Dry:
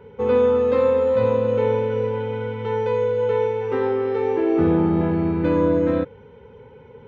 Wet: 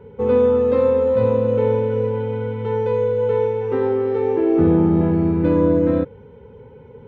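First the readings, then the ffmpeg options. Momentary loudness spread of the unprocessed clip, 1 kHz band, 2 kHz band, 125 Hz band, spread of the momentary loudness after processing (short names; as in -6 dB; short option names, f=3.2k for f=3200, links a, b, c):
7 LU, -1.0 dB, -3.0 dB, +4.0 dB, 7 LU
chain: -af "tiltshelf=f=730:g=4.5"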